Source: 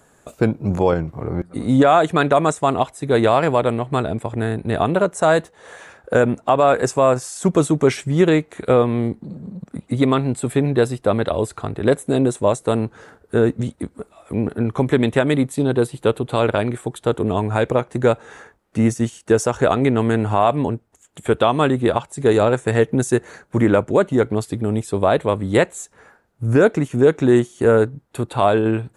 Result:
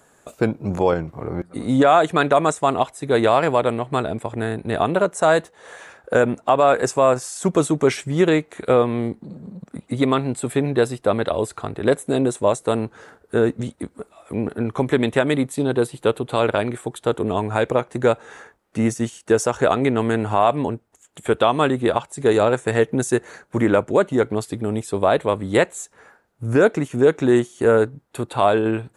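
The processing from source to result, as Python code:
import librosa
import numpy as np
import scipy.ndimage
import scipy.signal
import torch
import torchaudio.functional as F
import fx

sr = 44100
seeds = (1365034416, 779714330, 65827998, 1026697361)

y = fx.low_shelf(x, sr, hz=210.0, db=-6.5)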